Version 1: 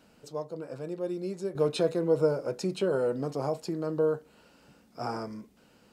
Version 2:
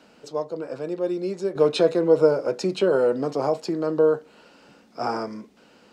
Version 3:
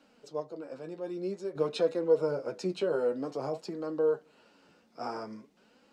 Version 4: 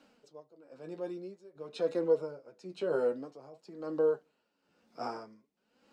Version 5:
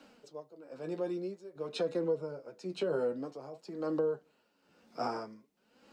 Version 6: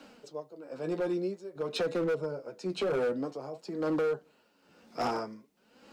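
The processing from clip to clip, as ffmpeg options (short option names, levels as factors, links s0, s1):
-filter_complex "[0:a]acrossover=split=200 7200:gain=0.251 1 0.224[s0][s1][s2];[s0][s1][s2]amix=inputs=3:normalize=0,volume=2.51"
-af "flanger=delay=3.6:depth=9:regen=39:speed=0.51:shape=sinusoidal,volume=0.501"
-af "aeval=exprs='val(0)*pow(10,-18*(0.5-0.5*cos(2*PI*1*n/s))/20)':c=same"
-filter_complex "[0:a]acrossover=split=200[s0][s1];[s1]acompressor=threshold=0.0158:ratio=5[s2];[s0][s2]amix=inputs=2:normalize=0,volume=1.88"
-af "asoftclip=type=hard:threshold=0.0266,volume=1.88"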